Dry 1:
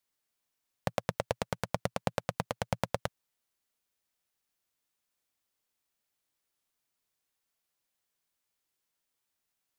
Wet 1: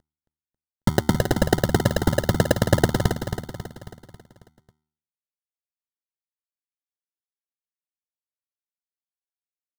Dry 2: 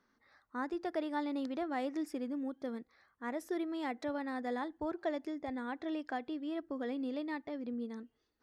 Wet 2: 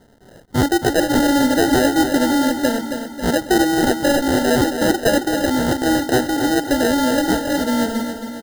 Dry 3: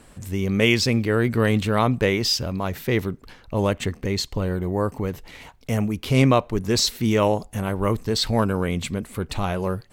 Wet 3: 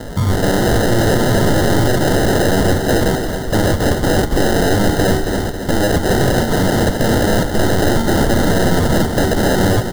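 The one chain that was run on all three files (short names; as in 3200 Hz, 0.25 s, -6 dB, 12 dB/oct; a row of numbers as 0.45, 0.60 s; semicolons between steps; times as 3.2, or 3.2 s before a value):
CVSD 32 kbps; de-hum 76.42 Hz, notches 5; dynamic EQ 2300 Hz, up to -5 dB, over -40 dBFS, Q 1; in parallel at 0 dB: negative-ratio compressor -26 dBFS, ratio -0.5; on the sum: sample-and-hold 39×; wavefolder -23 dBFS; Butterworth band-stop 2500 Hz, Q 3.2; on a send: feedback echo 0.272 s, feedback 51%, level -8 dB; on the sum: normalise peaks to -3 dBFS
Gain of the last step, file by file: +16.5, +15.0, +13.5 dB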